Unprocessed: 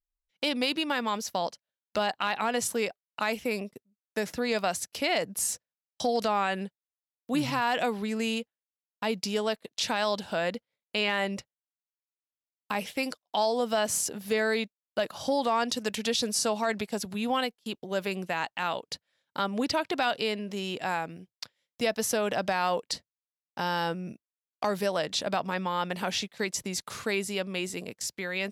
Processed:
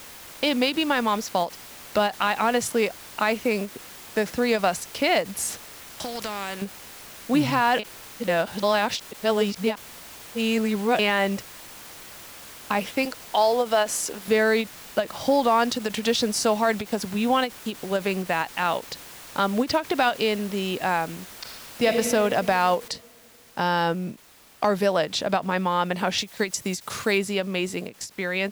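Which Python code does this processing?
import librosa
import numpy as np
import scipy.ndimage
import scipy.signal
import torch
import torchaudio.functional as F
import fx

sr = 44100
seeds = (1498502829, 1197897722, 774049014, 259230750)

y = fx.spectral_comp(x, sr, ratio=2.0, at=(5.49, 6.62))
y = fx.highpass(y, sr, hz=330.0, slope=12, at=(13.05, 14.28))
y = fx.reverb_throw(y, sr, start_s=21.3, length_s=0.57, rt60_s=2.4, drr_db=0.5)
y = fx.noise_floor_step(y, sr, seeds[0], at_s=22.88, before_db=-45, after_db=-55, tilt_db=0.0)
y = fx.high_shelf(y, sr, hz=4200.0, db=7.5, at=(26.18, 27.18))
y = fx.edit(y, sr, fx.reverse_span(start_s=7.79, length_s=3.2), tone=tone)
y = fx.high_shelf(y, sr, hz=3600.0, db=-7.0)
y = fx.end_taper(y, sr, db_per_s=270.0)
y = F.gain(torch.from_numpy(y), 7.0).numpy()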